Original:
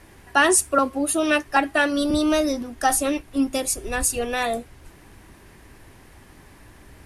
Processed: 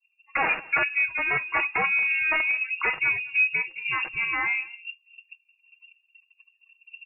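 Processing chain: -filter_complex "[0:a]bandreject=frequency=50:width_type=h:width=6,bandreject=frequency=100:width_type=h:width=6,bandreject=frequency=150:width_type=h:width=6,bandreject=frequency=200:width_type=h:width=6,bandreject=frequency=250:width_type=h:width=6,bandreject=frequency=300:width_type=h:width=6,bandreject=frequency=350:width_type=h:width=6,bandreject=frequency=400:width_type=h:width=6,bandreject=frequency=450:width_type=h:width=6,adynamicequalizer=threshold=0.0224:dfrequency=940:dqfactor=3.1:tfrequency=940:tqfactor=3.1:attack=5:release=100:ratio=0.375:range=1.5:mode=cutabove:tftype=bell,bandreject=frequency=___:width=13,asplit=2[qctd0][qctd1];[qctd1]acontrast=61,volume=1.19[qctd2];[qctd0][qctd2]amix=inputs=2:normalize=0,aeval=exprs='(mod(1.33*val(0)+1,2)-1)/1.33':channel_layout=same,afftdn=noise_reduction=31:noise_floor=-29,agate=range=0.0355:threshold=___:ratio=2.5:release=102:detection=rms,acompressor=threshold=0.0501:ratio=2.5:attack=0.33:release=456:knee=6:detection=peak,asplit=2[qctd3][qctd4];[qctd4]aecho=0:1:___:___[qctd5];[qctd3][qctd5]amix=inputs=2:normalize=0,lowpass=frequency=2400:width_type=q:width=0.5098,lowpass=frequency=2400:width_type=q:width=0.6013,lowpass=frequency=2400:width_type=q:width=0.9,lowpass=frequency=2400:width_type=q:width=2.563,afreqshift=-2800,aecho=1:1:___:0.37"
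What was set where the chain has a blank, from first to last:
2200, 0.0282, 214, 0.0668, 6.3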